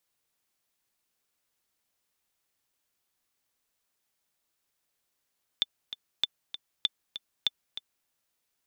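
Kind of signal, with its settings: metronome 195 bpm, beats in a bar 2, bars 4, 3.53 kHz, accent 12 dB -11.5 dBFS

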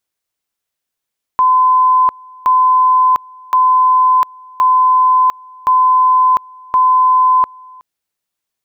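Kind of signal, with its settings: two-level tone 1.02 kHz -7 dBFS, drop 27 dB, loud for 0.70 s, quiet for 0.37 s, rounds 6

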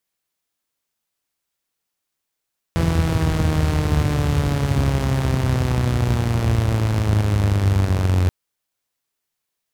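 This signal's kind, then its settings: four-cylinder engine model, changing speed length 5.53 s, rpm 5000, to 2700, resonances 82 Hz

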